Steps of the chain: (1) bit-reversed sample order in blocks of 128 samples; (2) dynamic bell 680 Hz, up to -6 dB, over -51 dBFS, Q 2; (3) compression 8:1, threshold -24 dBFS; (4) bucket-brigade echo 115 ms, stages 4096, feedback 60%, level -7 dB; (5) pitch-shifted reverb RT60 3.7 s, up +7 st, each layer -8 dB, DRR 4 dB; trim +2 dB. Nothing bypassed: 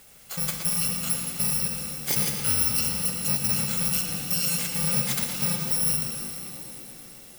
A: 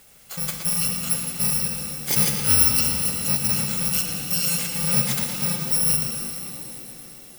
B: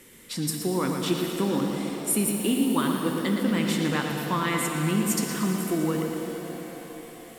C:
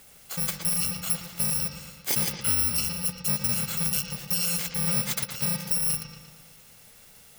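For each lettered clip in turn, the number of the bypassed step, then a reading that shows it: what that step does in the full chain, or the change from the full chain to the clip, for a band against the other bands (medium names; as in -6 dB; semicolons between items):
3, crest factor change +3.0 dB; 1, 8 kHz band -12.0 dB; 5, loudness change -1.5 LU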